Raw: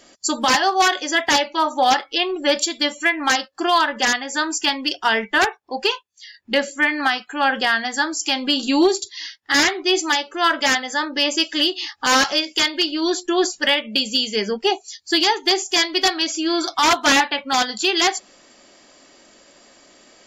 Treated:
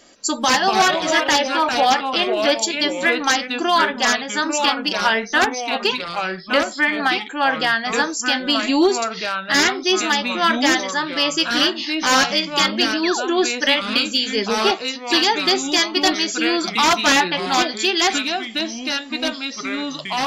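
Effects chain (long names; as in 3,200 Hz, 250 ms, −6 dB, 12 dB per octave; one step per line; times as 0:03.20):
delay with pitch and tempo change per echo 158 ms, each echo −3 semitones, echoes 2, each echo −6 dB
sound drawn into the spectrogram fall, 0:13.03–0:13.29, 290–2,800 Hz −26 dBFS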